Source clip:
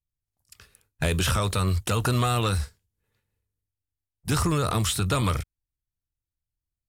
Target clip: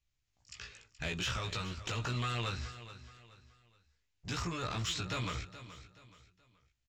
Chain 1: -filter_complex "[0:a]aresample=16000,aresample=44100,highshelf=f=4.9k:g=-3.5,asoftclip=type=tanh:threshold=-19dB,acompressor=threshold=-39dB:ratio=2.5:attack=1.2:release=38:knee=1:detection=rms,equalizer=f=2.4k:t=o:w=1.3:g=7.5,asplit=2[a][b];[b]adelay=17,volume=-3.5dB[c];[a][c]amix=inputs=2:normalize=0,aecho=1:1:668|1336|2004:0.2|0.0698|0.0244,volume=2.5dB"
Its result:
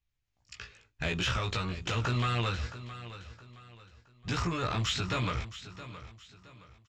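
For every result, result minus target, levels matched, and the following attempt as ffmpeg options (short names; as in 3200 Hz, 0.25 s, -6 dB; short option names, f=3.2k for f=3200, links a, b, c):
echo 0.243 s late; compressor: peak gain reduction -6 dB; 8000 Hz band -4.0 dB
-filter_complex "[0:a]aresample=16000,aresample=44100,highshelf=f=4.9k:g=-3.5,asoftclip=type=tanh:threshold=-19dB,acompressor=threshold=-39dB:ratio=2.5:attack=1.2:release=38:knee=1:detection=rms,equalizer=f=2.4k:t=o:w=1.3:g=7.5,asplit=2[a][b];[b]adelay=17,volume=-3.5dB[c];[a][c]amix=inputs=2:normalize=0,aecho=1:1:425|850|1275:0.2|0.0698|0.0244,volume=2.5dB"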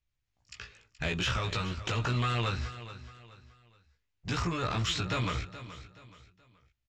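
compressor: peak gain reduction -6 dB; 8000 Hz band -4.5 dB
-filter_complex "[0:a]aresample=16000,aresample=44100,highshelf=f=4.9k:g=-3.5,asoftclip=type=tanh:threshold=-19dB,acompressor=threshold=-49dB:ratio=2.5:attack=1.2:release=38:knee=1:detection=rms,equalizer=f=2.4k:t=o:w=1.3:g=7.5,asplit=2[a][b];[b]adelay=17,volume=-3.5dB[c];[a][c]amix=inputs=2:normalize=0,aecho=1:1:425|850|1275:0.2|0.0698|0.0244,volume=2.5dB"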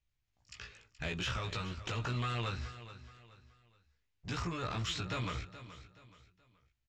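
8000 Hz band -4.5 dB
-filter_complex "[0:a]aresample=16000,aresample=44100,highshelf=f=4.9k:g=6.5,asoftclip=type=tanh:threshold=-19dB,acompressor=threshold=-49dB:ratio=2.5:attack=1.2:release=38:knee=1:detection=rms,equalizer=f=2.4k:t=o:w=1.3:g=7.5,asplit=2[a][b];[b]adelay=17,volume=-3.5dB[c];[a][c]amix=inputs=2:normalize=0,aecho=1:1:425|850|1275:0.2|0.0698|0.0244,volume=2.5dB"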